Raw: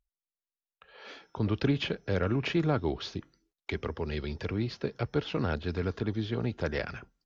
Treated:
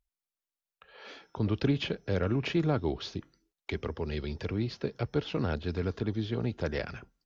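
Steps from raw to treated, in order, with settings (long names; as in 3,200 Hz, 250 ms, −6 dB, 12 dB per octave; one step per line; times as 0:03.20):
dynamic equaliser 1,500 Hz, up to −3 dB, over −47 dBFS, Q 0.78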